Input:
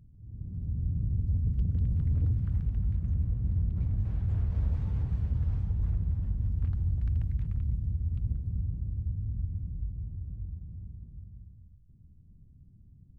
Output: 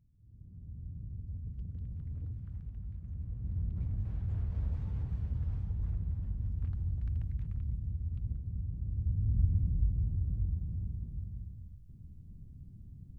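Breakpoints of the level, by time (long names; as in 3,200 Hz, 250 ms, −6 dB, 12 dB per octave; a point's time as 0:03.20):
0:03.06 −13 dB
0:03.66 −5.5 dB
0:08.67 −5.5 dB
0:09.43 +5.5 dB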